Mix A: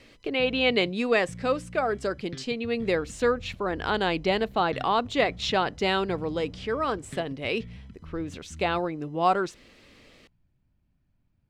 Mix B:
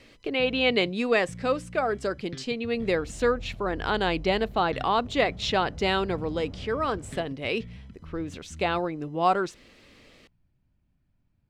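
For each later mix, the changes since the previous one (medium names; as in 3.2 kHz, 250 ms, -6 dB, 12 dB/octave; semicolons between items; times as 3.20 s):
second sound +8.0 dB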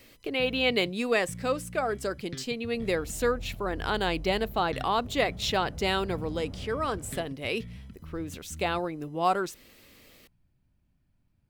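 speech -3.0 dB; master: remove distance through air 83 m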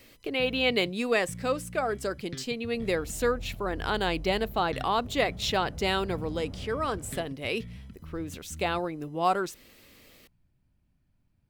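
no change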